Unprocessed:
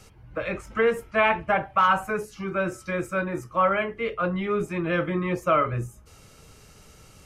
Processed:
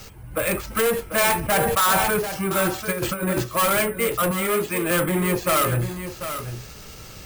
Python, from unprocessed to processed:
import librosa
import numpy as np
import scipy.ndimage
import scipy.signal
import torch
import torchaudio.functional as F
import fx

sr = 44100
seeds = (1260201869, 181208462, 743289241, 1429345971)

y = fx.over_compress(x, sr, threshold_db=-32.0, ratio=-0.5, at=(2.91, 3.42), fade=0.02)
y = fx.highpass(y, sr, hz=400.0, slope=6, at=(4.31, 4.91))
y = np.repeat(y[::4], 4)[:len(y)]
y = 10.0 ** (-26.5 / 20.0) * np.tanh(y / 10.0 ** (-26.5 / 20.0))
y = fx.high_shelf(y, sr, hz=6500.0, db=9.0)
y = y + 10.0 ** (-10.0 / 20.0) * np.pad(y, (int(742 * sr / 1000.0), 0))[:len(y)]
y = fx.sustainer(y, sr, db_per_s=24.0, at=(1.39, 2.19))
y = F.gain(torch.from_numpy(y), 8.5).numpy()